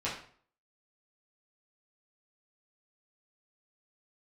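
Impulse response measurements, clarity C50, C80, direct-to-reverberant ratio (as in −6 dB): 5.5 dB, 9.5 dB, −8.0 dB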